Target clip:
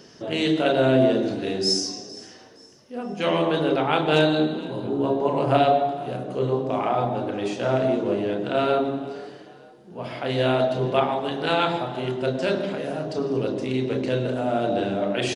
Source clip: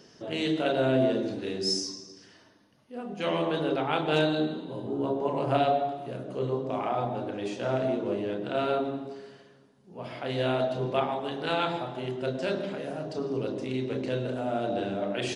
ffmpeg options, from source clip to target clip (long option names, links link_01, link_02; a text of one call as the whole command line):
ffmpeg -i in.wav -filter_complex "[0:a]asplit=4[link_01][link_02][link_03][link_04];[link_02]adelay=462,afreqshift=37,volume=-20.5dB[link_05];[link_03]adelay=924,afreqshift=74,volume=-28.7dB[link_06];[link_04]adelay=1386,afreqshift=111,volume=-36.9dB[link_07];[link_01][link_05][link_06][link_07]amix=inputs=4:normalize=0,volume=6dB" out.wav